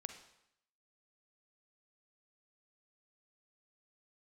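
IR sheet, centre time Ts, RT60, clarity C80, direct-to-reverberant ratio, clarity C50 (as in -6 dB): 16 ms, 0.75 s, 11.0 dB, 7.0 dB, 8.0 dB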